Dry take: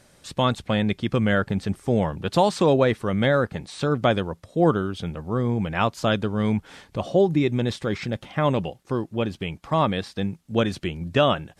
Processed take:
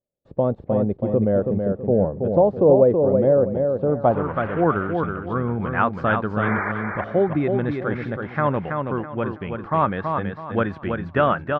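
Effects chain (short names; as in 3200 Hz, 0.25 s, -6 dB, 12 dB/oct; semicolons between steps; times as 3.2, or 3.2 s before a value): 4.09–4.61 delta modulation 16 kbps, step -26.5 dBFS; gate -45 dBFS, range -34 dB; 6.42–6.72 painted sound noise 310–2400 Hz -28 dBFS; feedback echo 0.326 s, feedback 30%, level -5 dB; low-pass sweep 550 Hz -> 1500 Hz, 3.81–4.42; gain -1.5 dB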